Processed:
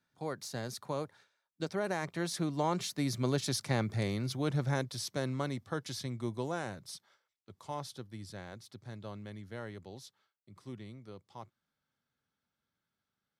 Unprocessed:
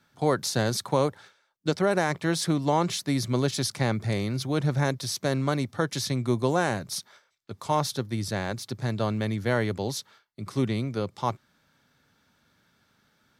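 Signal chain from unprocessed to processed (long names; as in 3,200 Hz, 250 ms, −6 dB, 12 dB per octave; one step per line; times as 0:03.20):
source passing by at 0:03.82, 13 m/s, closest 18 metres
level −5.5 dB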